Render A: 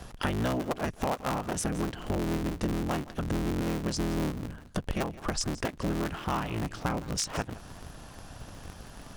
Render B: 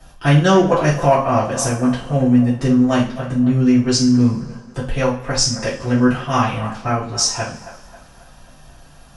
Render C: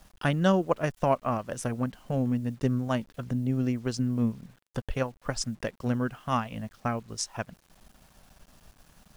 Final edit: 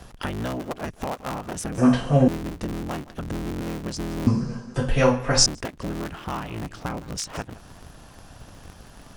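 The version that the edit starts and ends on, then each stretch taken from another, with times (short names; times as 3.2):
A
1.78–2.28 from B
4.27–5.46 from B
not used: C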